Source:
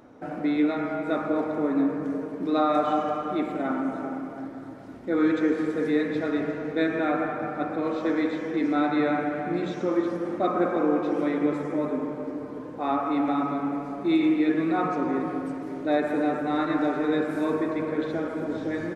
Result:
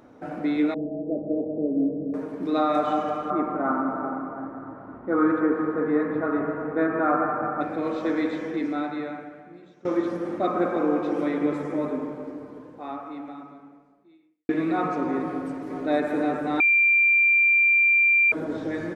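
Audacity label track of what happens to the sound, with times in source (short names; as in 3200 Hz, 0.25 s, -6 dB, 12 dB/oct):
0.740000	2.140000	steep low-pass 630 Hz 48 dB/oct
3.300000	7.610000	synth low-pass 1200 Hz, resonance Q 3.2
8.440000	9.850000	fade out quadratic, to -22.5 dB
11.870000	14.490000	fade out quadratic
15.220000	15.730000	echo throw 0.48 s, feedback 75%, level -7 dB
16.600000	18.320000	bleep 2370 Hz -15.5 dBFS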